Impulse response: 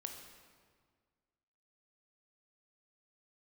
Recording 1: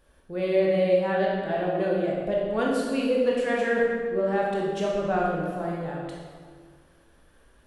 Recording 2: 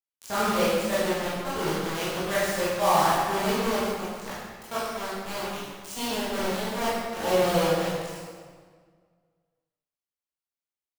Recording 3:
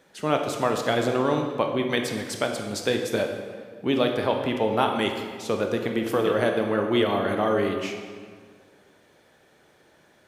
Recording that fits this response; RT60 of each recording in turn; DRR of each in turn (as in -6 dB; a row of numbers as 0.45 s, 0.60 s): 3; 1.7 s, 1.7 s, 1.7 s; -4.0 dB, -11.0 dB, 3.5 dB